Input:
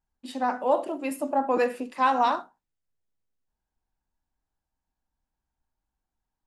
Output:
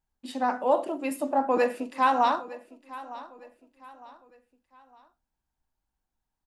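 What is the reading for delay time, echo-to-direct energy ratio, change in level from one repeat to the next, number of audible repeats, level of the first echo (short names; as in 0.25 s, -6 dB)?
0.908 s, -17.0 dB, -8.5 dB, 3, -17.5 dB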